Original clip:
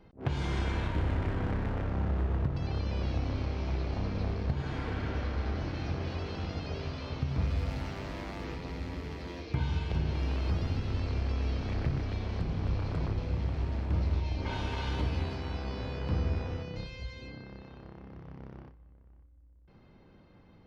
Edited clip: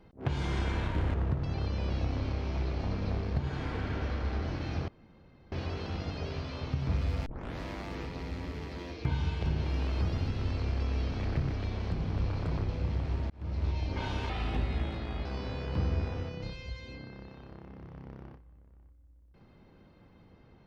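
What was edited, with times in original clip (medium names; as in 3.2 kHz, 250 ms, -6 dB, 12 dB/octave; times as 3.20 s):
1.14–2.27 s: delete
6.01 s: insert room tone 0.64 s
7.75 s: tape start 0.34 s
13.79–14.20 s: fade in linear
14.78–15.59 s: speed 84%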